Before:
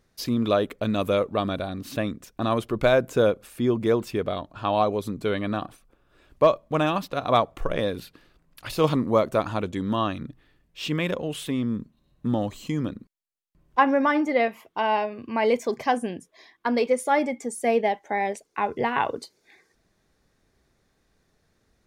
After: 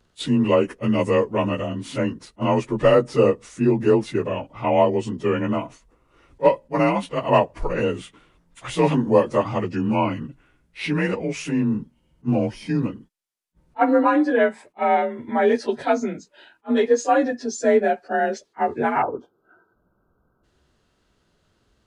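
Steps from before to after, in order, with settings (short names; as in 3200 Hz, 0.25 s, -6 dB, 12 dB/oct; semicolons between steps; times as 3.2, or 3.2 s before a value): inharmonic rescaling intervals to 90%; spectral gain 19.02–20.44, 1600–11000 Hz -30 dB; attack slew limiter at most 530 dB/s; gain +5.5 dB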